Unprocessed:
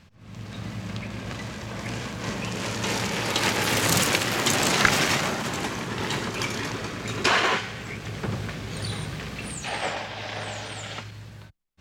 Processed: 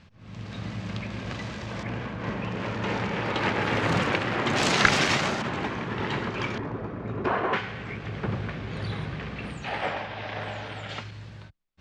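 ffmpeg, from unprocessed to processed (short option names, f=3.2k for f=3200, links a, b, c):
-af "asetnsamples=n=441:p=0,asendcmd='1.83 lowpass f 2200;4.56 lowpass f 5600;5.42 lowpass f 2600;6.58 lowpass f 1000;7.53 lowpass f 2700;10.89 lowpass f 5000',lowpass=5.2k"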